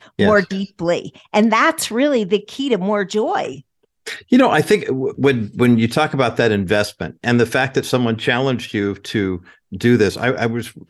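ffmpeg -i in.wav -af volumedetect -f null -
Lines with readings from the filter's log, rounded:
mean_volume: -17.6 dB
max_volume: -3.1 dB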